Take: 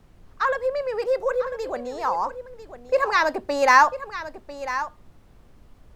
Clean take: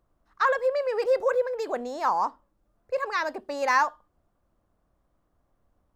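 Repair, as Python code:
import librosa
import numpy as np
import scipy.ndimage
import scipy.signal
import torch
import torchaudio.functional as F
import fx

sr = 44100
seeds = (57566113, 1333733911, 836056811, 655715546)

y = fx.noise_reduce(x, sr, print_start_s=5.11, print_end_s=5.61, reduce_db=21.0)
y = fx.fix_echo_inverse(y, sr, delay_ms=997, level_db=-12.5)
y = fx.gain(y, sr, db=fx.steps((0.0, 0.0), (2.83, -7.5)))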